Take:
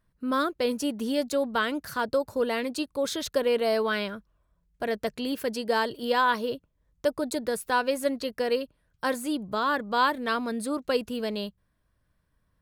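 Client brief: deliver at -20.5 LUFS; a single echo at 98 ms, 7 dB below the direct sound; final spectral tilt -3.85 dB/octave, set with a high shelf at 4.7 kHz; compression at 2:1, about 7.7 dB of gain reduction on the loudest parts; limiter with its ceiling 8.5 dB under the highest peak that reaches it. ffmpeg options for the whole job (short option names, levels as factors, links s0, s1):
-af "highshelf=f=4700:g=-4.5,acompressor=threshold=0.02:ratio=2,alimiter=level_in=1.68:limit=0.0631:level=0:latency=1,volume=0.596,aecho=1:1:98:0.447,volume=6.68"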